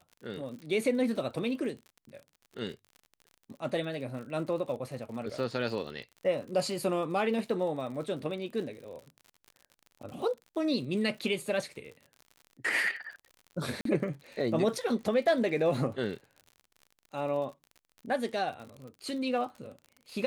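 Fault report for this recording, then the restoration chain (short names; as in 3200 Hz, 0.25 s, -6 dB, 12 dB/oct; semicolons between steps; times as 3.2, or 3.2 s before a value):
crackle 54/s -41 dBFS
13.81–13.85 gap 43 ms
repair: de-click; interpolate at 13.81, 43 ms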